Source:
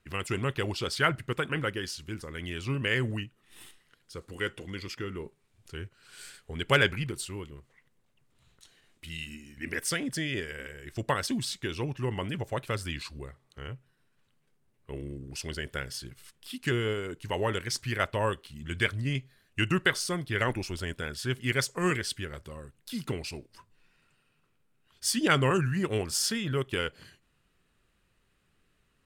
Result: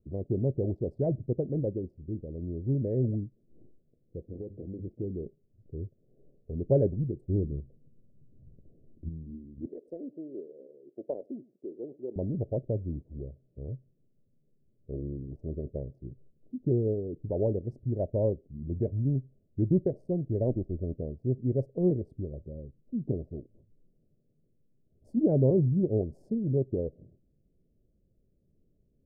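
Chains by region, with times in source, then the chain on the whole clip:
4.33–4.85 de-hum 98.07 Hz, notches 3 + compressor 3:1, threshold -34 dBFS
7.28–9.09 low shelf 490 Hz +10.5 dB + notches 60/120/180 Hz
9.66–12.16 ladder high-pass 280 Hz, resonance 25% + echo 99 ms -20.5 dB
whole clip: Wiener smoothing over 41 samples; elliptic low-pass 630 Hz, stop band 50 dB; gain +4 dB

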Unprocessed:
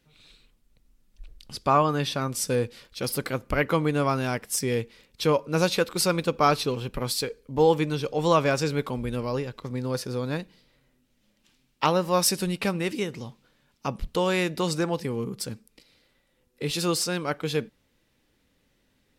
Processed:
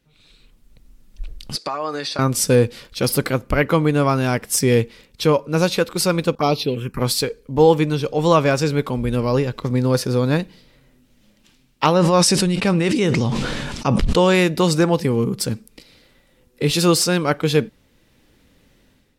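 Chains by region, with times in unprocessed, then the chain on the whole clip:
1.56–2.19 speaker cabinet 470–9600 Hz, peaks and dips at 960 Hz -4 dB, 3100 Hz -8 dB, 4500 Hz +9 dB + compressor, threshold -33 dBFS + comb 6.4 ms, depth 43%
6.35–6.99 expander -43 dBFS + HPF 120 Hz 6 dB/oct + envelope phaser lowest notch 400 Hz, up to 1600 Hz, full sweep at -19.5 dBFS
11.94–14.35 LPF 9500 Hz 24 dB/oct + sustainer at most 20 dB/s
whole clip: low shelf 410 Hz +3.5 dB; AGC gain up to 11.5 dB; gain -1 dB

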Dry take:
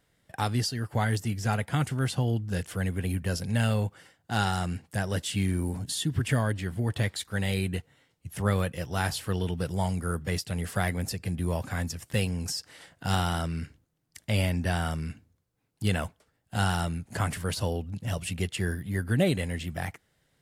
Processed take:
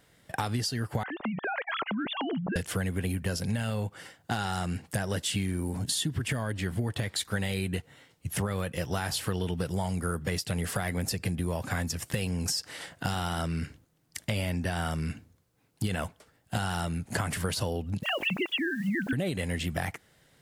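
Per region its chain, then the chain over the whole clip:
1.03–2.56 sine-wave speech + compressor, threshold -37 dBFS
18.03–19.13 sine-wave speech + EQ curve 1900 Hz 0 dB, 3600 Hz +9 dB, 5800 Hz -26 dB + requantised 10-bit, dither triangular
whole clip: low shelf 87 Hz -6 dB; limiter -18.5 dBFS; compressor 10:1, threshold -35 dBFS; gain +8.5 dB

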